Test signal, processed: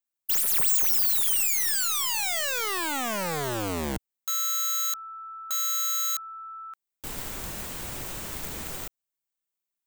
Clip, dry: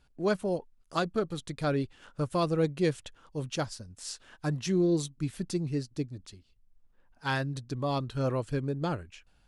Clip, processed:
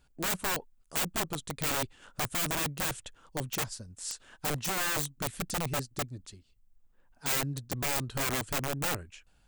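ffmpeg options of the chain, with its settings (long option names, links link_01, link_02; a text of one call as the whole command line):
ffmpeg -i in.wav -af "aeval=exprs='0.211*(cos(1*acos(clip(val(0)/0.211,-1,1)))-cos(1*PI/2))+0.00422*(cos(3*acos(clip(val(0)/0.211,-1,1)))-cos(3*PI/2))+0.00266*(cos(4*acos(clip(val(0)/0.211,-1,1)))-cos(4*PI/2))':channel_layout=same,aeval=exprs='(mod(22.4*val(0)+1,2)-1)/22.4':channel_layout=same,aexciter=amount=2:drive=3.2:freq=7000" out.wav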